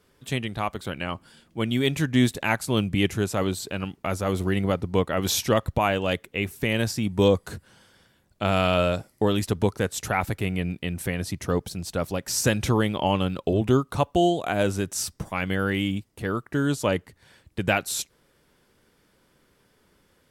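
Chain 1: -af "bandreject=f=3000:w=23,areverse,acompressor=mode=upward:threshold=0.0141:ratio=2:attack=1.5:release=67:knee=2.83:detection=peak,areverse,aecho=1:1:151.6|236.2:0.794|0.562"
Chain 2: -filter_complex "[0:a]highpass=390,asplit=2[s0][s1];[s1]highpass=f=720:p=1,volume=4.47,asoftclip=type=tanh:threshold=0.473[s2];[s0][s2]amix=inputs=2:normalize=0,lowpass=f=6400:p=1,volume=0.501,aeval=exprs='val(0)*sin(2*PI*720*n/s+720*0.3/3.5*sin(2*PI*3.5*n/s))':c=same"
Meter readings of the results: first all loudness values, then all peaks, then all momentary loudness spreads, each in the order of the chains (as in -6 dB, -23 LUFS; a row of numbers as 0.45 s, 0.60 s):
-23.0 LUFS, -26.5 LUFS; -6.5 dBFS, -7.5 dBFS; 9 LU, 8 LU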